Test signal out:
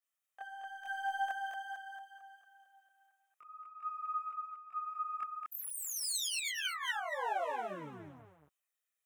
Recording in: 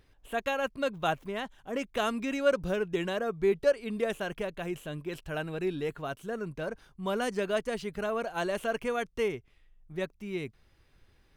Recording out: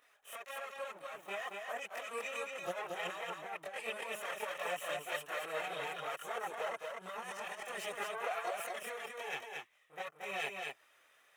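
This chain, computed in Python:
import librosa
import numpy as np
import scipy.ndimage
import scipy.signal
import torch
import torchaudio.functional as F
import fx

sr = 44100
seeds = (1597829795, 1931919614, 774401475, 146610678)

y = fx.lower_of_two(x, sr, delay_ms=1.6)
y = scipy.signal.sosfilt(scipy.signal.butter(2, 810.0, 'highpass', fs=sr, output='sos'), y)
y = fx.peak_eq(y, sr, hz=4600.0, db=-14.5, octaves=0.42)
y = fx.over_compress(y, sr, threshold_db=-43.0, ratio=-1.0)
y = fx.chorus_voices(y, sr, voices=4, hz=0.45, base_ms=24, depth_ms=3.7, mix_pct=65)
y = y + 10.0 ** (-4.0 / 20.0) * np.pad(y, (int(228 * sr / 1000.0), 0))[:len(y)]
y = y * librosa.db_to_amplitude(3.5)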